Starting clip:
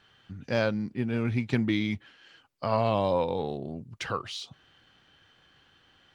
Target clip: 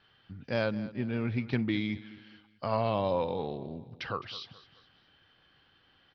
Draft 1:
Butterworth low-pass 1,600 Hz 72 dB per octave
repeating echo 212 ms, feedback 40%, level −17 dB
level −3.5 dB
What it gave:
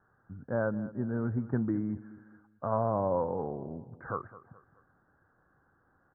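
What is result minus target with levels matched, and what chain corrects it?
2,000 Hz band −5.5 dB
Butterworth low-pass 5,400 Hz 72 dB per octave
repeating echo 212 ms, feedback 40%, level −17 dB
level −3.5 dB

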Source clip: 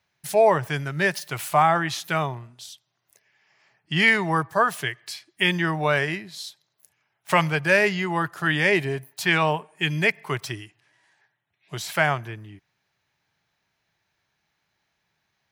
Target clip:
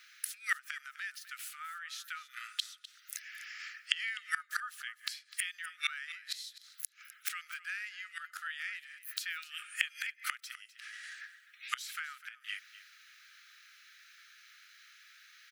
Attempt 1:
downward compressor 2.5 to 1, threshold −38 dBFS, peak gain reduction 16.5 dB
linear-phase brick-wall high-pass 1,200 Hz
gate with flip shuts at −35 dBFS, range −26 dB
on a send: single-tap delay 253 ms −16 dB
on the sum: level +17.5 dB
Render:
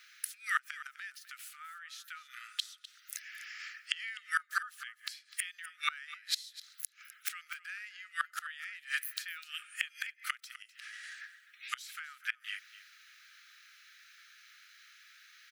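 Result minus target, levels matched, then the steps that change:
downward compressor: peak gain reduction +4 dB
change: downward compressor 2.5 to 1, threshold −31 dBFS, peak gain reduction 12.5 dB

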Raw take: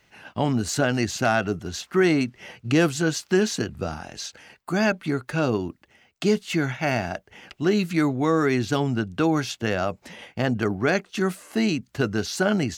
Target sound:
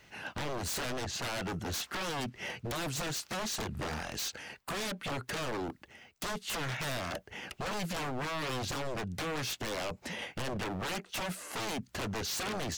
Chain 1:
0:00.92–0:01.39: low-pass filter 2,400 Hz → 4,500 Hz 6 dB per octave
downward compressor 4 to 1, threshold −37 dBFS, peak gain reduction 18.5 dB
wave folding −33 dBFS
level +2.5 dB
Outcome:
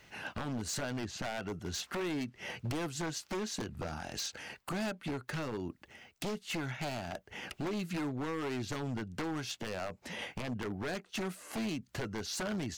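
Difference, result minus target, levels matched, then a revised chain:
downward compressor: peak gain reduction +7 dB
0:00.92–0:01.39: low-pass filter 2,400 Hz → 4,500 Hz 6 dB per octave
downward compressor 4 to 1, threshold −27.5 dBFS, peak gain reduction 11.5 dB
wave folding −33 dBFS
level +2.5 dB

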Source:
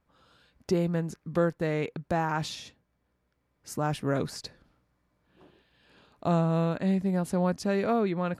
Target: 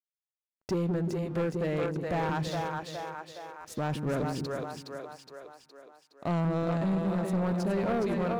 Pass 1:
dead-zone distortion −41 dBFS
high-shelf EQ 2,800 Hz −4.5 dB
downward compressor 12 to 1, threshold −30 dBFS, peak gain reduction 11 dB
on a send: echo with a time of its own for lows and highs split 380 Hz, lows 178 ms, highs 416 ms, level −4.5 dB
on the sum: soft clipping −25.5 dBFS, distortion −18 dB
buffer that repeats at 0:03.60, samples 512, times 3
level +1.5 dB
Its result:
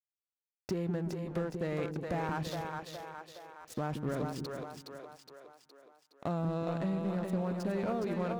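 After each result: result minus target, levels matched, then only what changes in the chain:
downward compressor: peak gain reduction +11 dB; dead-zone distortion: distortion +8 dB
remove: downward compressor 12 to 1, threshold −30 dBFS, peak gain reduction 11 dB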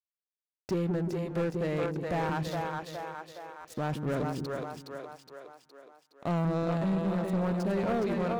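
dead-zone distortion: distortion +8 dB
change: dead-zone distortion −49.5 dBFS

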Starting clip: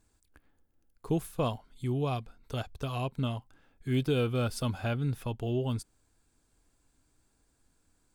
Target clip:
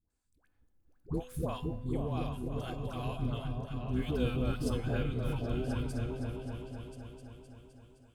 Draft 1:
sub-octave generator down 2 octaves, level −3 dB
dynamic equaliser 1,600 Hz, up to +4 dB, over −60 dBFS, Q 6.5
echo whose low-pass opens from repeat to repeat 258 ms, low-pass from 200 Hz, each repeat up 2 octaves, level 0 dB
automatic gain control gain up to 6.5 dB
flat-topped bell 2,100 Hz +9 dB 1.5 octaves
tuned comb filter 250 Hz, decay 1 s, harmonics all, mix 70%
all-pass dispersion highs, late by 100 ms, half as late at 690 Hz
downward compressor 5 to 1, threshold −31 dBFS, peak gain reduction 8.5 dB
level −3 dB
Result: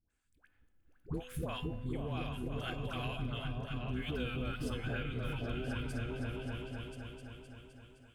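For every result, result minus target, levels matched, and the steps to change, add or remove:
downward compressor: peak gain reduction +8.5 dB; 2,000 Hz band +7.5 dB
remove: downward compressor 5 to 1, threshold −31 dBFS, peak gain reduction 8.5 dB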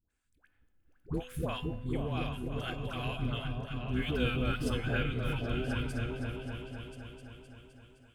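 2,000 Hz band +8.0 dB
remove: flat-topped bell 2,100 Hz +9 dB 1.5 octaves

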